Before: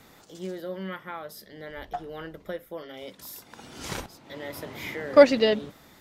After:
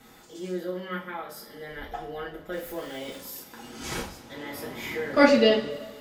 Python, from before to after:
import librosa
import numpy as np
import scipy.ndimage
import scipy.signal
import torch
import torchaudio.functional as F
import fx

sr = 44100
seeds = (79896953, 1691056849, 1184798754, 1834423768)

y = fx.zero_step(x, sr, step_db=-40.5, at=(2.52, 3.18))
y = fx.rev_double_slope(y, sr, seeds[0], early_s=0.33, late_s=1.8, knee_db=-18, drr_db=-4.5)
y = F.gain(torch.from_numpy(y), -4.0).numpy()